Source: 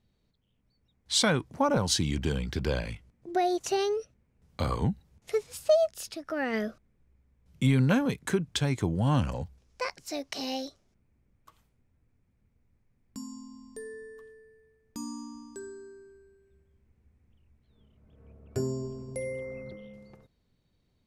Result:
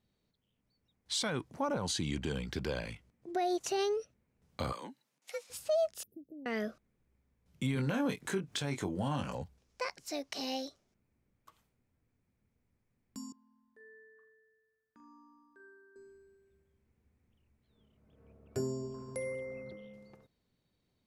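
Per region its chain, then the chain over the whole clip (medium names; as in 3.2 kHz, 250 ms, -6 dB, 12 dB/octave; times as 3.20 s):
1.73–2.35 s: low-pass 11 kHz + band-stop 5.4 kHz, Q 8.1
4.72–5.50 s: high-pass 1.3 kHz 6 dB/octave + frequency shift +67 Hz
6.03–6.46 s: compression 2.5:1, threshold -37 dBFS + inverse Chebyshev band-stop 1.1–6.6 kHz, stop band 60 dB + comb of notches 1.4 kHz
7.75–9.35 s: bass shelf 110 Hz -9 dB + upward compressor, threshold -33 dBFS + doubling 21 ms -5.5 dB
13.32–15.96 s: band-pass filter 1.6 kHz, Q 4.1 + tilt EQ -4.5 dB/octave + flutter echo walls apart 7 m, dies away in 0.3 s
18.94–19.35 s: high-order bell 1.3 kHz +9 dB 1.1 oct + tape noise reduction on one side only encoder only
whole clip: bass shelf 95 Hz -10.5 dB; peak limiter -21 dBFS; trim -3 dB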